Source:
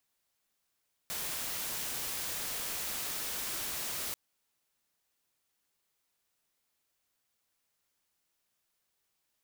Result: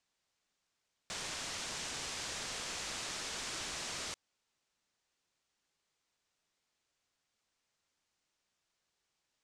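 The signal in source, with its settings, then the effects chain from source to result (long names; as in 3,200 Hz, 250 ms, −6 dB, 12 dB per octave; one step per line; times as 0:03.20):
noise white, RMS −37 dBFS 3.04 s
low-pass filter 7,600 Hz 24 dB per octave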